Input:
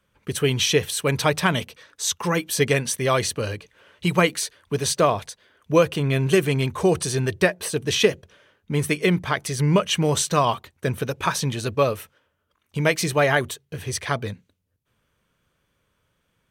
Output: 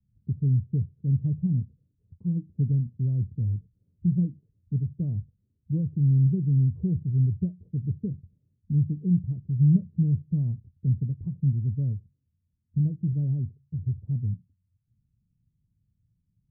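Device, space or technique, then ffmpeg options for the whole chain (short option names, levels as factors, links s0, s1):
the neighbour's flat through the wall: -af "lowpass=f=200:w=0.5412,lowpass=f=200:w=1.3066,equalizer=f=110:t=o:w=0.73:g=6"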